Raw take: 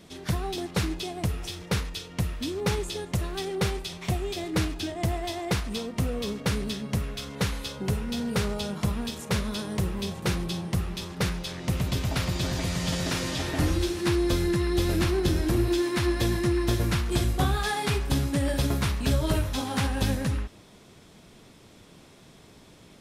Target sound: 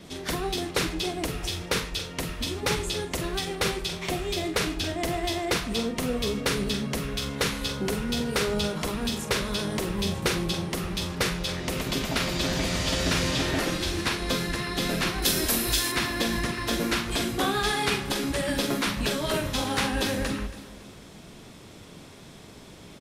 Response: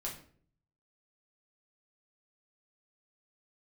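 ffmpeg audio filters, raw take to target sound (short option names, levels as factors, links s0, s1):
-filter_complex "[0:a]asettb=1/sr,asplit=3[s0][s1][s2];[s0]atrim=end=15.224[s3];[s1]atrim=start=15.22:end=15.92,asetpts=PTS-STARTPTS,afade=t=in:d=0.004:c=qsin,afade=t=out:st=0.696:d=0.004:c=qsin,aemphasis=mode=production:type=75fm[s4];[s2]atrim=start=15.916[s5];[s3][s4]acrossfade=d=0.004:c1=hsin:c2=qsin[s6];[s6][s5]acrossfade=d=0.004:c1=qsin:c2=hsin,asplit=2[s7][s8];[s8]adelay=44,volume=0.335[s9];[s7][s9]amix=inputs=2:normalize=0,acrossover=split=690|920[s10][s11][s12];[s11]acompressor=threshold=0.00141:ratio=6[s13];[s10][s13][s12]amix=inputs=3:normalize=0,afftfilt=real='re*lt(hypot(re,im),0.282)':imag='im*lt(hypot(re,im),0.282)':win_size=1024:overlap=0.75,asplit=2[s14][s15];[s15]aecho=0:1:278|556|834:0.141|0.0579|0.0237[s16];[s14][s16]amix=inputs=2:normalize=0,adynamicequalizer=threshold=0.00562:dfrequency=6000:dqfactor=0.7:tfrequency=6000:tqfactor=0.7:attack=5:release=100:ratio=0.375:range=2:mode=cutabove:tftype=highshelf,volume=1.78"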